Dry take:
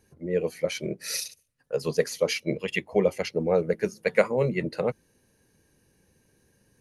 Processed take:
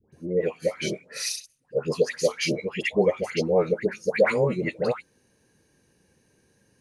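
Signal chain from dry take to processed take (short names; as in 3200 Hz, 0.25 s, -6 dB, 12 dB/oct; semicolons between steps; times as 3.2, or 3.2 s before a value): LPF 10000 Hz 24 dB/oct; low shelf 64 Hz -10 dB; dispersion highs, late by 0.126 s, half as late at 1100 Hz; gain +2 dB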